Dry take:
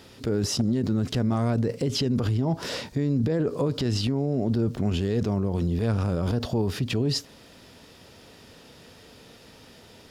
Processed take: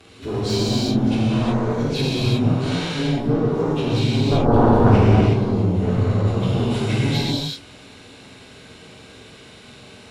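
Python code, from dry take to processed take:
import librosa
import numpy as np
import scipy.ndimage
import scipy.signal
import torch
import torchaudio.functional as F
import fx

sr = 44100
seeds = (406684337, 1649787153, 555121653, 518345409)

y = fx.partial_stretch(x, sr, pct=92)
y = fx.peak_eq(y, sr, hz=96.0, db=13.0, octaves=2.8, at=(4.31, 4.96))
y = fx.cheby_harmonics(y, sr, harmonics=(7,), levels_db=(-6,), full_scale_db=-6.5)
y = fx.rev_gated(y, sr, seeds[0], gate_ms=400, shape='flat', drr_db=-7.5)
y = y * 10.0 ** (-6.5 / 20.0)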